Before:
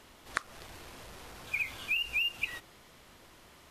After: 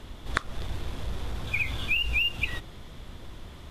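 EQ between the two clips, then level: RIAA curve playback; peaking EQ 3.5 kHz +9 dB 0.27 oct; treble shelf 5.6 kHz +10.5 dB; +5.5 dB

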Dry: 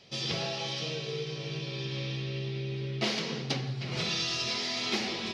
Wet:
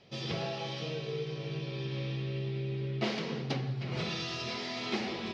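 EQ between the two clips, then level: low-pass 1.8 kHz 6 dB/octave; 0.0 dB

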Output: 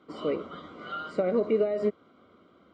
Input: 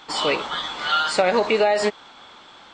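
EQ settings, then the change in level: boxcar filter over 51 samples; high-pass 76 Hz 24 dB/octave; peaking EQ 130 Hz -12 dB 0.26 oct; 0.0 dB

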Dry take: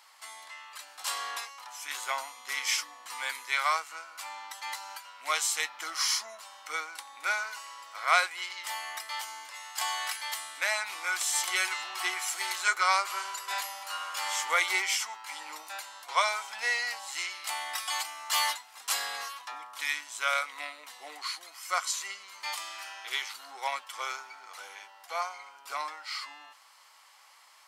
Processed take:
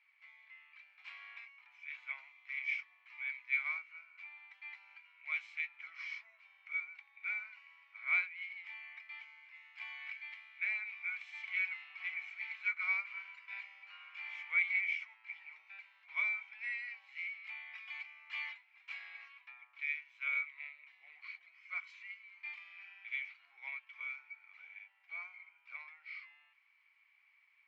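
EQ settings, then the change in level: band-pass filter 2.3 kHz, Q 16; distance through air 210 m; +4.5 dB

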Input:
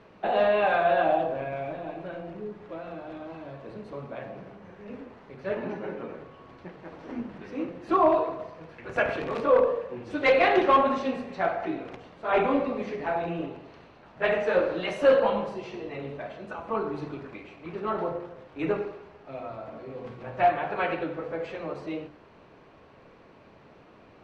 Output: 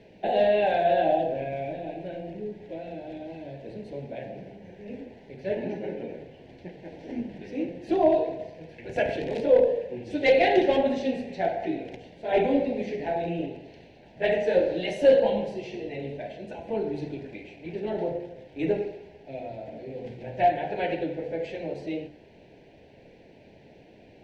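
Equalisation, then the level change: dynamic bell 2.4 kHz, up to -4 dB, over -46 dBFS, Q 4; Butterworth band-stop 1.2 kHz, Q 1.1; +2.0 dB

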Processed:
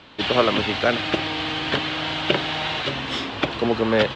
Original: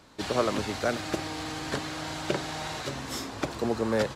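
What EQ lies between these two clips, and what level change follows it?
resonant low-pass 3.1 kHz, resonance Q 3.3; bass shelf 68 Hz -6 dB; +7.0 dB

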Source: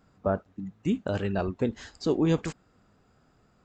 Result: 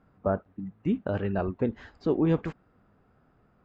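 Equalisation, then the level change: low-pass 2.1 kHz 12 dB/octave; 0.0 dB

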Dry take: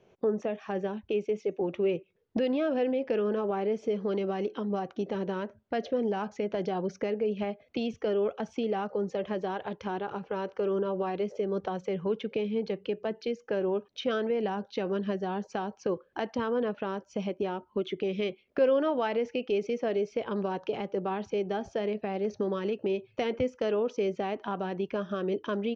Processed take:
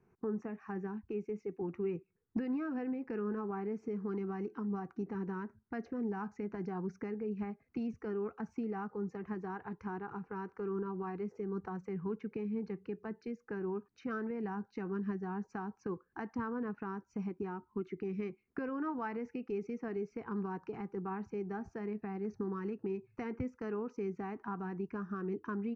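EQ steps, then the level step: treble shelf 2.2 kHz -11 dB; static phaser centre 1.4 kHz, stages 4; -2.0 dB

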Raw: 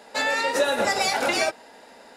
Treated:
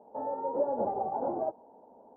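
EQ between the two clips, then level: high-pass 42 Hz; elliptic low-pass 910 Hz, stop band 60 dB; -5.5 dB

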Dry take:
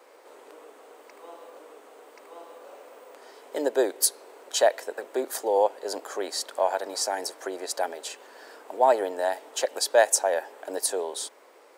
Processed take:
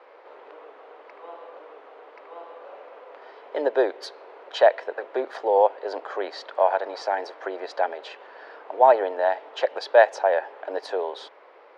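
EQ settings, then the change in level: band-pass 470–5700 Hz; distance through air 330 m; +6.5 dB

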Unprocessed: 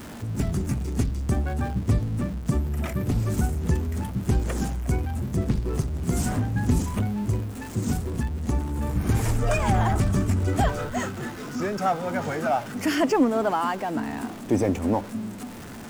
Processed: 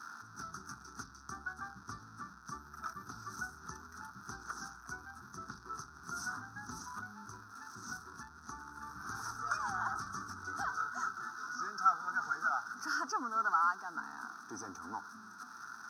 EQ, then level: dynamic bell 2.2 kHz, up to -6 dB, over -45 dBFS, Q 1.4; two resonant band-passes 2.9 kHz, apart 2.1 oct; static phaser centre 2.1 kHz, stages 6; +7.5 dB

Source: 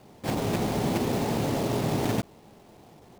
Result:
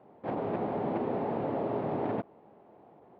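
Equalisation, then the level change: band-pass filter 660 Hz, Q 0.74; distance through air 420 m; 0.0 dB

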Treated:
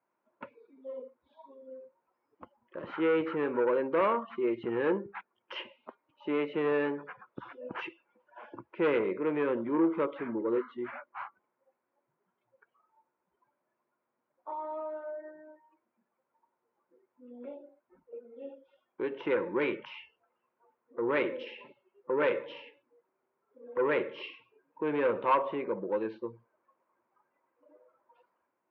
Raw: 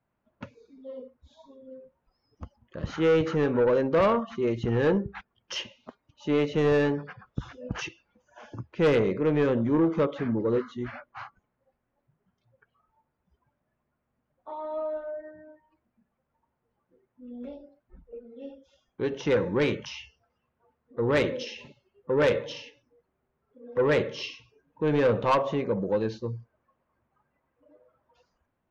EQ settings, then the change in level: cabinet simulation 290–2900 Hz, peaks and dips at 350 Hz +8 dB, 540 Hz +4 dB, 970 Hz +9 dB, 1.4 kHz +4 dB, 2.3 kHz +4 dB; dynamic bell 670 Hz, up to -5 dB, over -32 dBFS, Q 0.8; -5.0 dB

